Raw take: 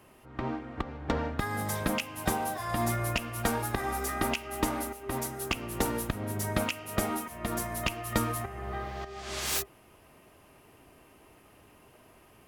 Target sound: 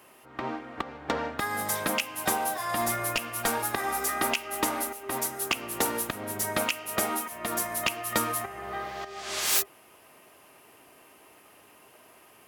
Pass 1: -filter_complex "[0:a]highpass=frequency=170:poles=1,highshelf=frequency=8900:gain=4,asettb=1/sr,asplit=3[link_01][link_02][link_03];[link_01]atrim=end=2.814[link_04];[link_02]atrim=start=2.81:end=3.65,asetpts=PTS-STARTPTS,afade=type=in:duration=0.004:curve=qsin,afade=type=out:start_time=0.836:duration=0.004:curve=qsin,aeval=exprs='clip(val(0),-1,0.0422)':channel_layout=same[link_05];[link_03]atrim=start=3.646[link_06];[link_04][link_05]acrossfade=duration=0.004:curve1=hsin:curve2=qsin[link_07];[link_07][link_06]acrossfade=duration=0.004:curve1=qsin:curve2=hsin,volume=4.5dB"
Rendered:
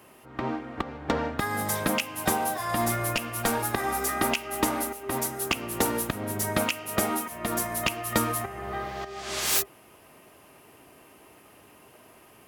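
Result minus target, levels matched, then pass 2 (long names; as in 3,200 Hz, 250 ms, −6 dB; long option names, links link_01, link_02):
125 Hz band +7.0 dB
-filter_complex "[0:a]highpass=frequency=520:poles=1,highshelf=frequency=8900:gain=4,asettb=1/sr,asplit=3[link_01][link_02][link_03];[link_01]atrim=end=2.814[link_04];[link_02]atrim=start=2.81:end=3.65,asetpts=PTS-STARTPTS,afade=type=in:duration=0.004:curve=qsin,afade=type=out:start_time=0.836:duration=0.004:curve=qsin,aeval=exprs='clip(val(0),-1,0.0422)':channel_layout=same[link_05];[link_03]atrim=start=3.646[link_06];[link_04][link_05]acrossfade=duration=0.004:curve1=hsin:curve2=qsin[link_07];[link_07][link_06]acrossfade=duration=0.004:curve1=qsin:curve2=hsin,volume=4.5dB"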